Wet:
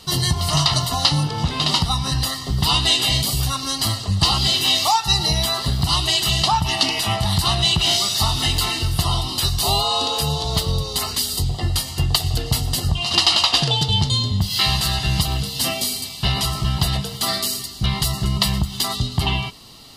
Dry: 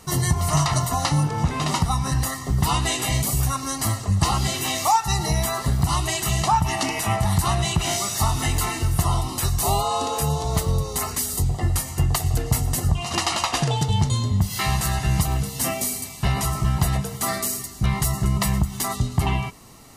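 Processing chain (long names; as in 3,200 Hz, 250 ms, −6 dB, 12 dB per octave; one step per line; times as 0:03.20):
flat-topped bell 3,800 Hz +13 dB 1 octave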